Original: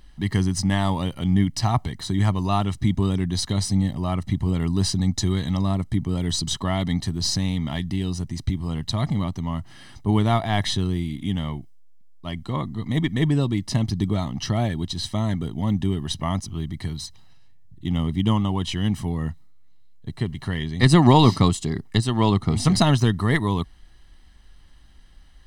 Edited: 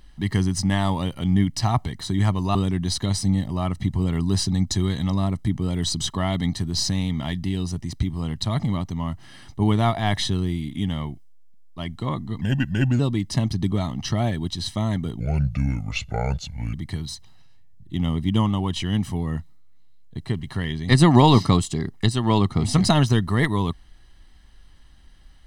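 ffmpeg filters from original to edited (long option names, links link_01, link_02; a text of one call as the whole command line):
ffmpeg -i in.wav -filter_complex "[0:a]asplit=6[link_01][link_02][link_03][link_04][link_05][link_06];[link_01]atrim=end=2.552[link_07];[link_02]atrim=start=3.018:end=12.884[link_08];[link_03]atrim=start=12.88:end=13.37,asetpts=PTS-STARTPTS,asetrate=37044,aresample=44100[link_09];[link_04]atrim=start=13.366:end=15.574[link_10];[link_05]atrim=start=15.57:end=16.65,asetpts=PTS-STARTPTS,asetrate=30870,aresample=44100[link_11];[link_06]atrim=start=16.646[link_12];[link_07][link_08]acrossfade=duration=0.004:curve1=hsin:curve2=hsin[link_13];[link_13][link_09]acrossfade=duration=0.004:curve1=hsin:curve2=hsin[link_14];[link_14][link_10]acrossfade=duration=0.004:curve1=hsin:curve2=hsin[link_15];[link_15][link_11]acrossfade=duration=0.004:curve1=hsin:curve2=hsin[link_16];[link_16][link_12]acrossfade=duration=0.004:curve1=hsin:curve2=hsin" out.wav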